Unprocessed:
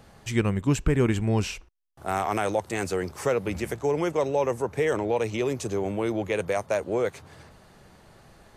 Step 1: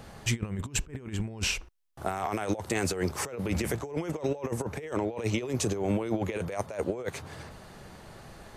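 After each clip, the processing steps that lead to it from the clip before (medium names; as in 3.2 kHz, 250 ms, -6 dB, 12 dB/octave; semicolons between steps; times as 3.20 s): compressor with a negative ratio -30 dBFS, ratio -0.5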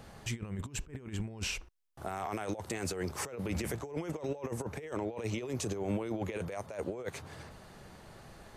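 peak limiter -21 dBFS, peak gain reduction 7 dB; trim -4.5 dB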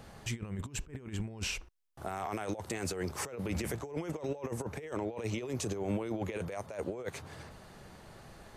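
no audible change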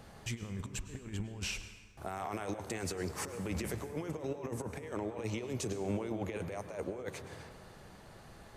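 plate-style reverb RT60 1.6 s, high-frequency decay 0.6×, pre-delay 90 ms, DRR 10 dB; trim -2 dB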